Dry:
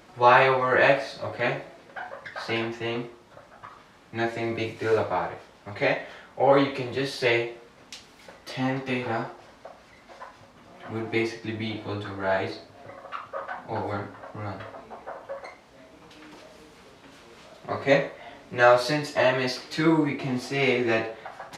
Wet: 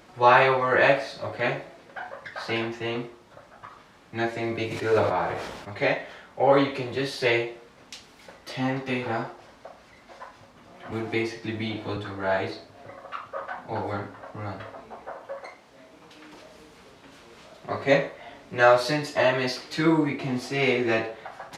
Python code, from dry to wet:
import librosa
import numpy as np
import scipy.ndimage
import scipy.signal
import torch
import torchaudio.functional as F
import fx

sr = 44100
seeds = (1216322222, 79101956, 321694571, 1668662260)

y = fx.sustainer(x, sr, db_per_s=41.0, at=(4.7, 5.7), fade=0.02)
y = fx.band_squash(y, sr, depth_pct=40, at=(10.92, 11.97))
y = fx.low_shelf(y, sr, hz=79.0, db=-10.0, at=(15.14, 16.34))